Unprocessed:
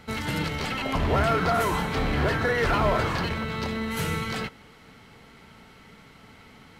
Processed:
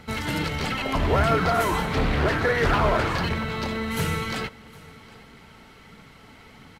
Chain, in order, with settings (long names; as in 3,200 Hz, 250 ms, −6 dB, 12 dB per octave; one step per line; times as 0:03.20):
phase shifter 1.5 Hz, delay 3.6 ms, feedback 25%
on a send: single-tap delay 760 ms −22.5 dB
0:01.86–0:03.12: on the sum: highs frequency-modulated by the lows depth 0.3 ms
level +1.5 dB